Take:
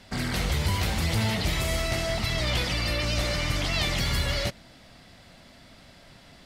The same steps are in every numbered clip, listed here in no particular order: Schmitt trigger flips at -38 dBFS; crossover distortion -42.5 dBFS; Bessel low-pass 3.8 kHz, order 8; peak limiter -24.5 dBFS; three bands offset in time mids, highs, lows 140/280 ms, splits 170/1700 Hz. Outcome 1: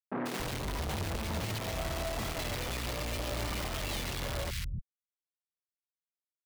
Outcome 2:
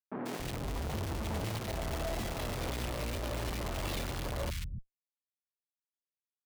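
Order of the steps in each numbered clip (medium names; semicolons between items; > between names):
Bessel low-pass > Schmitt trigger > crossover distortion > three bands offset in time > peak limiter; Bessel low-pass > crossover distortion > peak limiter > Schmitt trigger > three bands offset in time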